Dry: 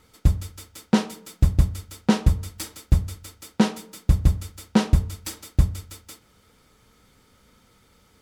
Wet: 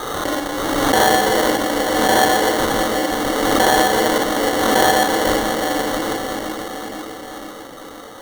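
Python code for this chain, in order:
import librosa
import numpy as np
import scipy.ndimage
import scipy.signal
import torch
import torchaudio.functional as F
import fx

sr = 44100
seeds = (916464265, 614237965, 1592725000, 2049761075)

p1 = fx.peak_eq(x, sr, hz=740.0, db=10.0, octaves=1.5)
p2 = fx.cheby_harmonics(p1, sr, harmonics=(5,), levels_db=(-21,), full_scale_db=-4.0)
p3 = p2 + 0.55 * np.pad(p2, (int(3.8 * sr / 1000.0), 0))[:len(p2)]
p4 = fx.room_shoebox(p3, sr, seeds[0], volume_m3=210.0, walls='hard', distance_m=1.1)
p5 = fx.over_compress(p4, sr, threshold_db=-16.0, ratio=-1.0)
p6 = p4 + F.gain(torch.from_numpy(p5), 3.0).numpy()
p7 = scipy.signal.sosfilt(scipy.signal.cheby1(4, 1.0, [310.0, 8600.0], 'bandpass', fs=sr, output='sos'), p6)
p8 = p7 + fx.echo_feedback(p7, sr, ms=495, feedback_pct=60, wet_db=-10.5, dry=0)
p9 = fx.sample_hold(p8, sr, seeds[1], rate_hz=2500.0, jitter_pct=0)
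p10 = fx.pre_swell(p9, sr, db_per_s=23.0)
y = F.gain(torch.from_numpy(p10), -4.0).numpy()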